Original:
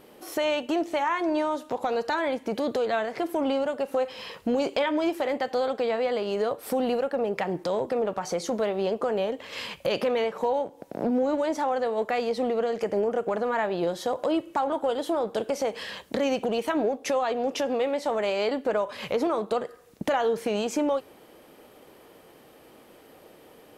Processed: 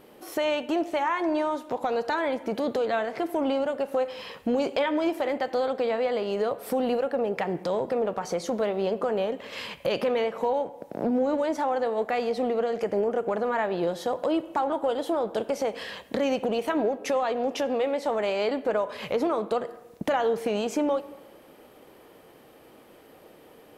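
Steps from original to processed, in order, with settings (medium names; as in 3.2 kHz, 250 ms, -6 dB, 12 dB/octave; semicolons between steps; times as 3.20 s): peaking EQ 6.7 kHz -3 dB 1.9 oct; reverberation RT60 1.2 s, pre-delay 67 ms, DRR 18 dB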